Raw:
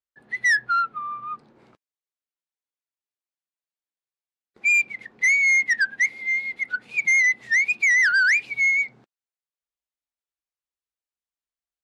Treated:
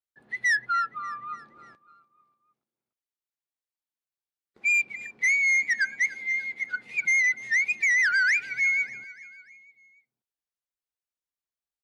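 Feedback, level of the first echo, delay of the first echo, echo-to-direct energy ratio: 53%, -18.5 dB, 0.294 s, -17.0 dB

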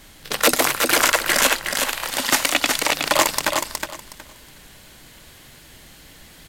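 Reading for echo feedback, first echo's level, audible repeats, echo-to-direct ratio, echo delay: 21%, -5.0 dB, 3, -5.0 dB, 0.367 s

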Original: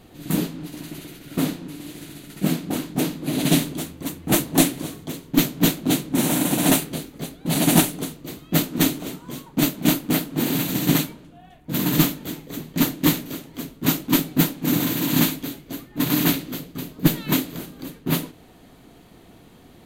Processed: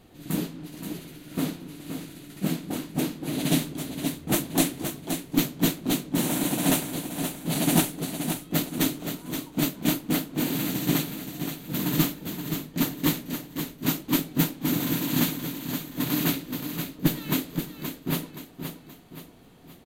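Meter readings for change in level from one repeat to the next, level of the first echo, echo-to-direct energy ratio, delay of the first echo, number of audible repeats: -7.0 dB, -8.0 dB, -7.0 dB, 0.524 s, 3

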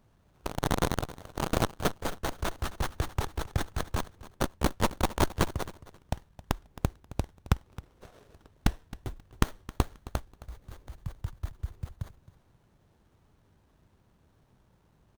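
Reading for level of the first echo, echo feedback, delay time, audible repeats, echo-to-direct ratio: -17.5 dB, 21%, 0.267 s, 2, -17.5 dB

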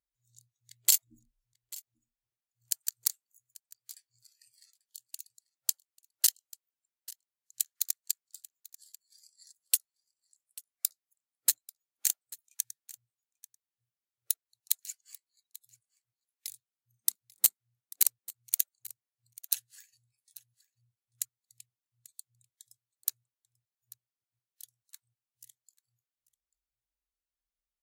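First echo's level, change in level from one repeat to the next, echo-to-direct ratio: -20.5 dB, no steady repeat, -20.5 dB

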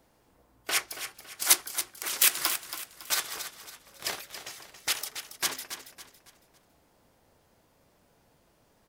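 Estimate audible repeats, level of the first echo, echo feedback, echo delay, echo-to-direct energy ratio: 3, -10.5 dB, 37%, 0.278 s, -10.0 dB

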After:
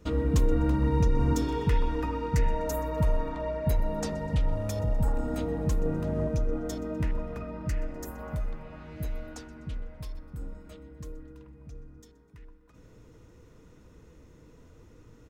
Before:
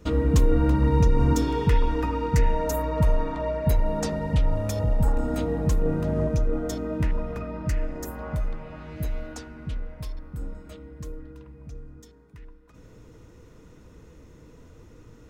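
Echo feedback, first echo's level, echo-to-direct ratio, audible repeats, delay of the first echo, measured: 51%, -21.0 dB, -19.5 dB, 3, 0.125 s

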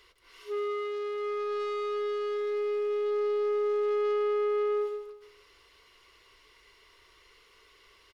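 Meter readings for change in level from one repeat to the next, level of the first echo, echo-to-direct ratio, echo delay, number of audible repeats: -9.5 dB, -8.0 dB, -7.5 dB, 0.156 s, 3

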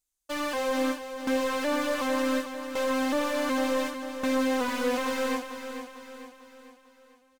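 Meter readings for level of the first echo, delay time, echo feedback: -9.5 dB, 0.448 s, 47%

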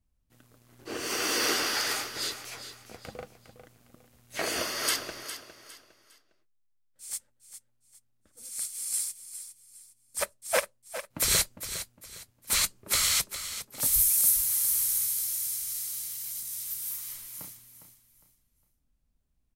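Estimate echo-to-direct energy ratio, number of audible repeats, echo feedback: -11.0 dB, 3, 31%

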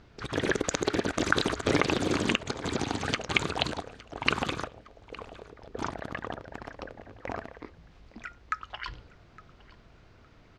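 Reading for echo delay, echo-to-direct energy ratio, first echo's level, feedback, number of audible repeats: 0.862 s, -21.0 dB, -21.0 dB, 21%, 2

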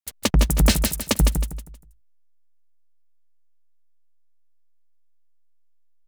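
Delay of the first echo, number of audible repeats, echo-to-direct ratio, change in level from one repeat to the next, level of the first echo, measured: 0.158 s, 3, -5.5 dB, -10.0 dB, -6.0 dB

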